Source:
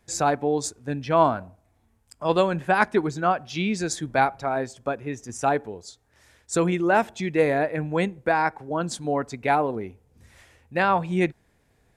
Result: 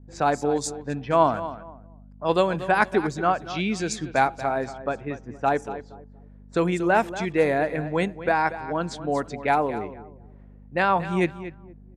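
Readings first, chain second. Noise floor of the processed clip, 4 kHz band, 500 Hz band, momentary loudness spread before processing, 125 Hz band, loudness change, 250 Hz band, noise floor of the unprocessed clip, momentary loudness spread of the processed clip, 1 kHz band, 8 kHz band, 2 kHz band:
-48 dBFS, -0.5 dB, 0.0 dB, 9 LU, -1.0 dB, 0.0 dB, -0.5 dB, -65 dBFS, 11 LU, 0.0 dB, -4.0 dB, 0.0 dB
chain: hum 50 Hz, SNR 19 dB; low shelf 110 Hz -4.5 dB; feedback echo 0.235 s, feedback 26%, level -13.5 dB; low-pass opened by the level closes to 510 Hz, open at -21.5 dBFS

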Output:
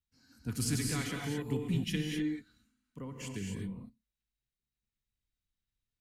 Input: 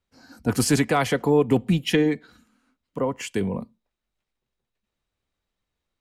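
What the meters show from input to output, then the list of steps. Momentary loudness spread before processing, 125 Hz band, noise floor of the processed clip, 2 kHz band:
10 LU, -8.5 dB, under -85 dBFS, -12.5 dB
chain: passive tone stack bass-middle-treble 6-0-2; non-linear reverb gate 0.28 s rising, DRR 0.5 dB; gain +4 dB

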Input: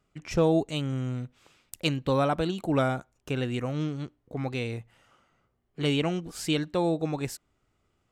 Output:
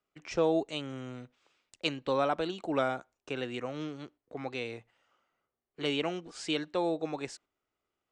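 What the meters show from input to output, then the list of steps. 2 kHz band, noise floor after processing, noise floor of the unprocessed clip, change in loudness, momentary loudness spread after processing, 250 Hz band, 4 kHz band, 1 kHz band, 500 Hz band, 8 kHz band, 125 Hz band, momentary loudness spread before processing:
-2.5 dB, under -85 dBFS, -74 dBFS, -4.5 dB, 13 LU, -7.0 dB, -2.5 dB, -2.5 dB, -3.5 dB, -7.0 dB, -14.5 dB, 11 LU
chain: steep low-pass 9800 Hz 48 dB/oct; three-band isolator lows -14 dB, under 280 Hz, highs -16 dB, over 7500 Hz; gate -54 dBFS, range -7 dB; gain -2.5 dB

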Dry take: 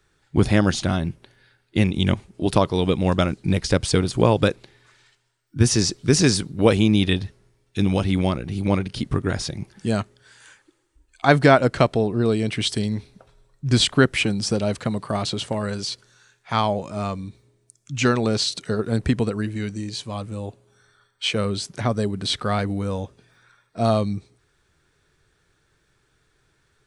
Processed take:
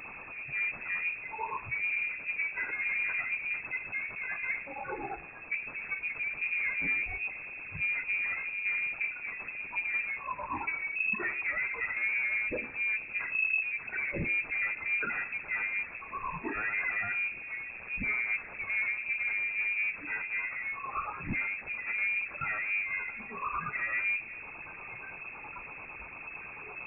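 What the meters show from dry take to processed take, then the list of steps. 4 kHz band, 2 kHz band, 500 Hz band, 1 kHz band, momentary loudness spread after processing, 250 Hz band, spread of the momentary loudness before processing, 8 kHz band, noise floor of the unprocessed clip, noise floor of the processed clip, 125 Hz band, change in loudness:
under -30 dB, +2.0 dB, -25.0 dB, -12.0 dB, 11 LU, -26.0 dB, 13 LU, under -40 dB, -67 dBFS, -45 dBFS, -28.0 dB, -10.0 dB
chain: infinite clipping; spectral noise reduction 19 dB; one-sided clip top -37.5 dBFS; LFO notch sine 8.9 Hz 590–1800 Hz; de-hum 75.36 Hz, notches 31; inverted band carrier 2600 Hz

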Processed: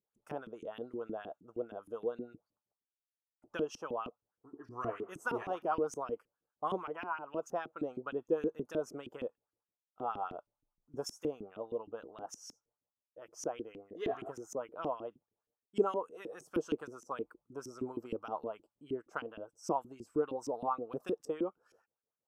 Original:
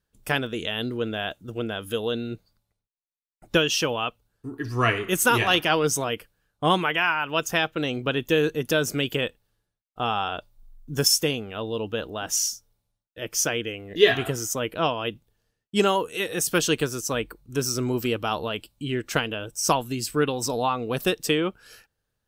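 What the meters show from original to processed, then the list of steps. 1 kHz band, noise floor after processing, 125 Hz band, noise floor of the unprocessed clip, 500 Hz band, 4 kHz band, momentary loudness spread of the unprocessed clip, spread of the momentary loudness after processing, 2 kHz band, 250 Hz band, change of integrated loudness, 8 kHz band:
-12.0 dB, under -85 dBFS, -22.0 dB, -82 dBFS, -11.0 dB, -29.0 dB, 11 LU, 12 LU, -21.5 dB, -13.0 dB, -14.5 dB, -25.5 dB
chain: band shelf 2700 Hz -16 dB; LFO band-pass saw up 6.4 Hz 260–2900 Hz; wow and flutter 24 cents; gain -4 dB

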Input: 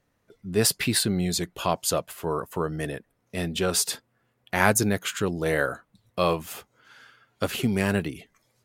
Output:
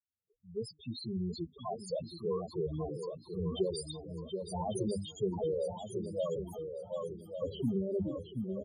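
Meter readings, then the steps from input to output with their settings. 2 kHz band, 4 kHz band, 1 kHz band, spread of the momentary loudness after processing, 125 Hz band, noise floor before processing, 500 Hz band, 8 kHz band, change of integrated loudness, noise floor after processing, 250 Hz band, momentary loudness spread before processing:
under -40 dB, -16.5 dB, -14.5 dB, 8 LU, -9.5 dB, -72 dBFS, -6.5 dB, -23.0 dB, -11.5 dB, -72 dBFS, -9.0 dB, 15 LU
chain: opening faded in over 2.44 s; Chebyshev band-stop 1100–3300 Hz, order 2; bell 77 Hz +5.5 dB 0.42 oct; notches 50/100/150/200/250/300 Hz; echo 0.725 s -8.5 dB; compressor 4:1, threshold -25 dBFS, peak gain reduction 8 dB; modulation noise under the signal 31 dB; wow and flutter 41 cents; loudest bins only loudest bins 4; dynamic EQ 360 Hz, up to +4 dB, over -43 dBFS, Q 2.2; feedback echo 1.148 s, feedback 26%, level -8 dB; gain -2 dB

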